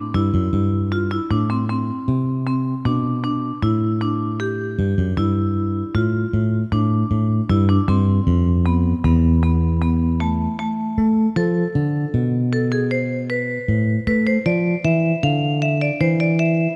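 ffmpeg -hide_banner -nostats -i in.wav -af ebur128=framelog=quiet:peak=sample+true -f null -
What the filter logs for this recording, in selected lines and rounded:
Integrated loudness:
  I:         -19.6 LUFS
  Threshold: -29.6 LUFS
Loudness range:
  LRA:         3.7 LU
  Threshold: -39.6 LUFS
  LRA low:   -21.4 LUFS
  LRA high:  -17.6 LUFS
Sample peak:
  Peak:       -6.5 dBFS
True peak:
  Peak:       -6.5 dBFS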